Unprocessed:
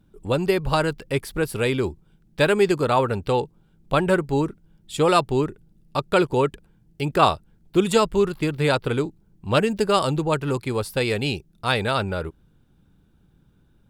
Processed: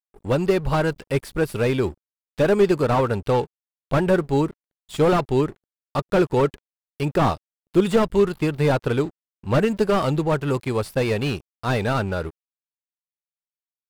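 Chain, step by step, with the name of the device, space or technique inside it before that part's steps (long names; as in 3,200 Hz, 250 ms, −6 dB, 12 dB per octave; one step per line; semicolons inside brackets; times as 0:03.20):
early transistor amplifier (dead-zone distortion −46 dBFS; slew-rate limiting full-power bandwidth 93 Hz)
level +2 dB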